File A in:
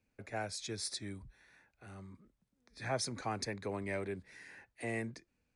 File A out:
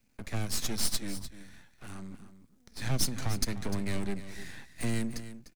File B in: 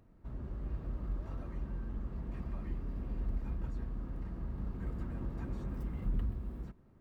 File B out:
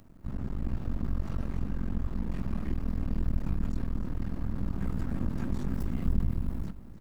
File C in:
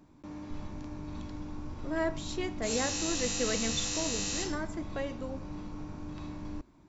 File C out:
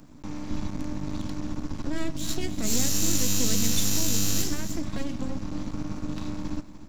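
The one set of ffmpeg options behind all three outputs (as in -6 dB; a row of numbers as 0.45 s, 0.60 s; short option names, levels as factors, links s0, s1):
-filter_complex "[0:a]bass=f=250:g=-7,treble=f=4000:g=7,asplit=2[s0][s1];[s1]acompressor=threshold=0.0112:ratio=6,volume=0.841[s2];[s0][s2]amix=inputs=2:normalize=0,aeval=exprs='max(val(0),0)':c=same,acrossover=split=420|3000[s3][s4][s5];[s4]acompressor=threshold=0.00447:ratio=3[s6];[s3][s6][s5]amix=inputs=3:normalize=0,lowshelf=f=310:t=q:w=1.5:g=7,asplit=2[s7][s8];[s8]aecho=0:1:300:0.224[s9];[s7][s9]amix=inputs=2:normalize=0,volume=1.78"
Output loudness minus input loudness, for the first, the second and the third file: +5.5 LU, +6.5 LU, +5.5 LU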